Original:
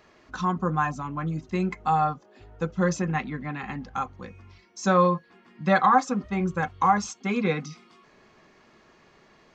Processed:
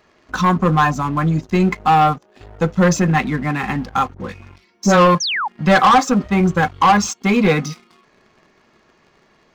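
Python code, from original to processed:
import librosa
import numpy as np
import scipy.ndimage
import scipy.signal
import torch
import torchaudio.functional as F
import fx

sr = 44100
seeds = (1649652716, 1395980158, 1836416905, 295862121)

p1 = fx.dispersion(x, sr, late='highs', ms=65.0, hz=1100.0, at=(4.14, 5.15))
p2 = 10.0 ** (-18.5 / 20.0) * np.tanh(p1 / 10.0 ** (-18.5 / 20.0))
p3 = p1 + (p2 * 10.0 ** (-6.0 / 20.0))
p4 = fx.leveller(p3, sr, passes=2)
p5 = fx.spec_paint(p4, sr, seeds[0], shape='fall', start_s=5.2, length_s=0.28, low_hz=760.0, high_hz=6700.0, level_db=-22.0)
y = p5 * 10.0 ** (1.5 / 20.0)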